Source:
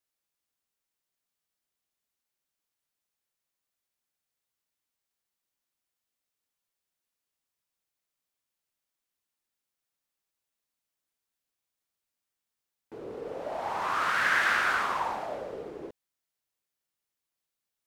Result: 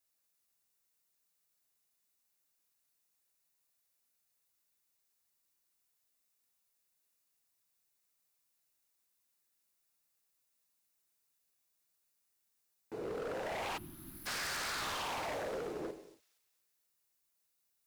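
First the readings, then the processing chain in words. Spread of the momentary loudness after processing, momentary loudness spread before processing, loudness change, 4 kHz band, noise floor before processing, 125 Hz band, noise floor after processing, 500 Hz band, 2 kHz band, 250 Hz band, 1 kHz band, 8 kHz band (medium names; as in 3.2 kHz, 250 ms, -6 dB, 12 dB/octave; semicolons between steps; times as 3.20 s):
10 LU, 19 LU, -11.0 dB, -3.0 dB, under -85 dBFS, -1.0 dB, -80 dBFS, -3.5 dB, -14.5 dB, -2.0 dB, -12.0 dB, +1.0 dB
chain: treble shelf 5.9 kHz +7.5 dB; band-stop 3.2 kHz, Q 14; gated-style reverb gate 310 ms falling, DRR 7 dB; compression, threshold -29 dBFS, peak gain reduction 9 dB; wavefolder -34 dBFS; on a send: feedback echo behind a high-pass 234 ms, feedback 42%, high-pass 4.7 kHz, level -7 dB; on the sum: time-frequency box 13.78–14.26 s, 370–10000 Hz -26 dB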